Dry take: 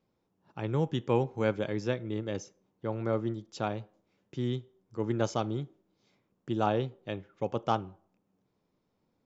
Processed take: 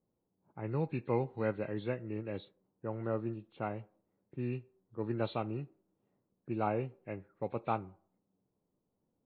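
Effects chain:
hearing-aid frequency compression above 1,500 Hz 1.5 to 1
low-pass that shuts in the quiet parts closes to 840 Hz, open at −26 dBFS
level −5 dB

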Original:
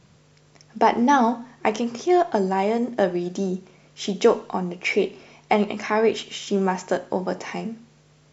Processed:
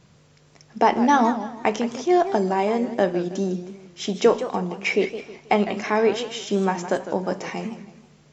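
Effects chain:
feedback echo with a swinging delay time 160 ms, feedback 37%, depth 178 cents, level −12 dB

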